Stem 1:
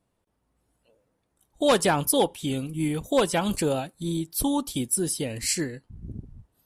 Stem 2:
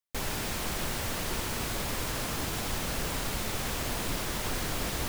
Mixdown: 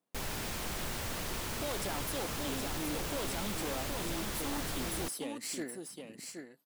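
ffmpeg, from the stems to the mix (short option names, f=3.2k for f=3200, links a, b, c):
-filter_complex "[0:a]aeval=exprs='if(lt(val(0),0),0.447*val(0),val(0))':c=same,highpass=f=190:w=0.5412,highpass=f=190:w=1.3066,alimiter=limit=-20dB:level=0:latency=1:release=38,volume=-7.5dB,asplit=2[a][b];[b]volume=-6.5dB[c];[1:a]volume=-4.5dB[d];[c]aecho=0:1:772:1[e];[a][d][e]amix=inputs=3:normalize=0,aeval=exprs='0.0316*(abs(mod(val(0)/0.0316+3,4)-2)-1)':c=same"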